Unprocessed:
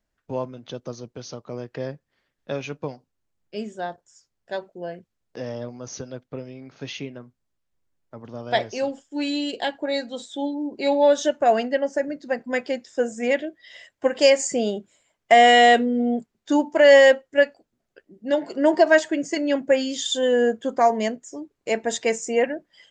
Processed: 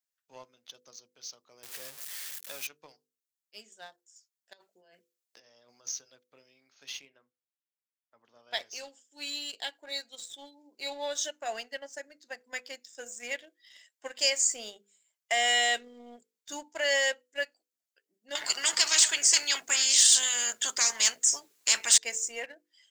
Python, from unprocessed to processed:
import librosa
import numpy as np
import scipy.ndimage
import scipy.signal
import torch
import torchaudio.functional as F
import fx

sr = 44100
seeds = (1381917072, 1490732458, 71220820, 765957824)

y = fx.zero_step(x, sr, step_db=-32.0, at=(1.63, 2.67))
y = fx.over_compress(y, sr, threshold_db=-37.0, ratio=-1.0, at=(4.53, 5.92))
y = fx.bass_treble(y, sr, bass_db=-2, treble_db=-10, at=(7.01, 8.54))
y = fx.spectral_comp(y, sr, ratio=4.0, at=(18.35, 21.98))
y = np.diff(y, prepend=0.0)
y = fx.hum_notches(y, sr, base_hz=50, count=10)
y = fx.leveller(y, sr, passes=1)
y = y * 10.0 ** (-1.0 / 20.0)